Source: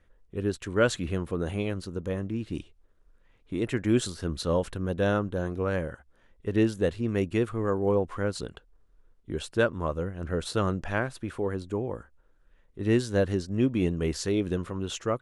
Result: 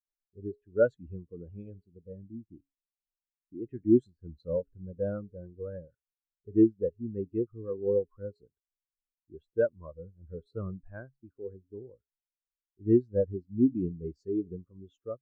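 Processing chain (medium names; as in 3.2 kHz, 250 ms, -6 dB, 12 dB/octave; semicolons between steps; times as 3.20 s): de-hum 138.5 Hz, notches 3; spectral contrast expander 2.5:1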